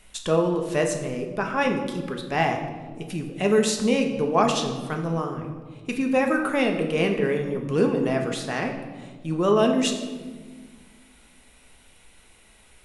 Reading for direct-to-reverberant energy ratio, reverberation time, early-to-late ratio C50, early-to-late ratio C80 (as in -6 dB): 3.0 dB, 1.5 s, 7.0 dB, 8.5 dB